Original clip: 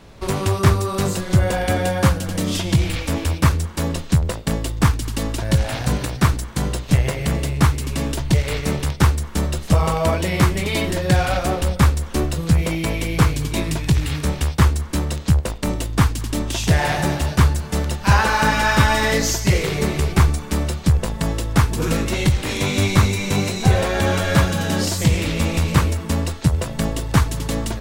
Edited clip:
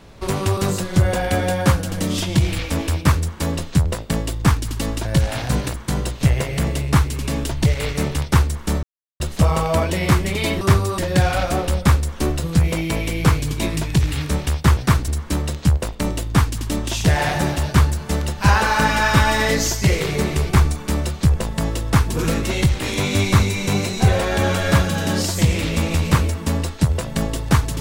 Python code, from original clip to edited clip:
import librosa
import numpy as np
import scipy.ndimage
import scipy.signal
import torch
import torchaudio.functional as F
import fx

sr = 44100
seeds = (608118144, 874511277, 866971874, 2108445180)

y = fx.edit(x, sr, fx.move(start_s=0.57, length_s=0.37, to_s=10.92),
    fx.move(start_s=6.11, length_s=0.31, to_s=14.71),
    fx.insert_silence(at_s=9.51, length_s=0.37), tone=tone)